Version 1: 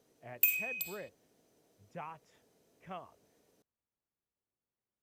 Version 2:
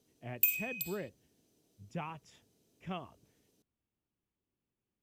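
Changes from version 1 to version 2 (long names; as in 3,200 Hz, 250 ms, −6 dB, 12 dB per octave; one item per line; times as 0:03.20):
speech +10.0 dB
master: add flat-topped bell 1,000 Hz −8.5 dB 2.5 octaves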